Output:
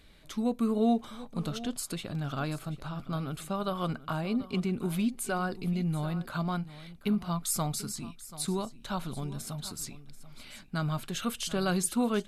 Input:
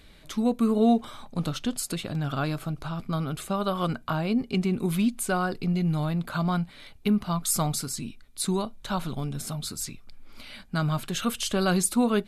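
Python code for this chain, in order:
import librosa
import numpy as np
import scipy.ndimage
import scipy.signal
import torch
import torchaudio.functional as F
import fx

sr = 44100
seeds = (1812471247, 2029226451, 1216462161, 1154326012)

y = x + 10.0 ** (-16.0 / 20.0) * np.pad(x, (int(736 * sr / 1000.0), 0))[:len(x)]
y = y * librosa.db_to_amplitude(-5.0)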